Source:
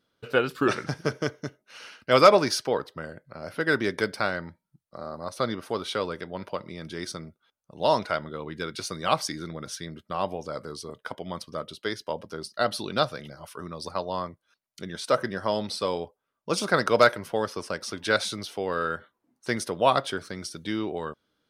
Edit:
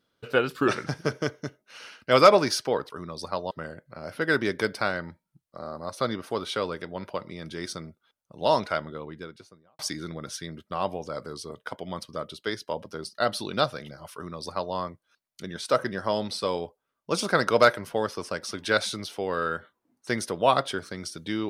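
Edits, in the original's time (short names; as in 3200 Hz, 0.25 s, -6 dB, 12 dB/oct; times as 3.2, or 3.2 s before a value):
8.09–9.18 studio fade out
13.53–14.14 copy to 2.9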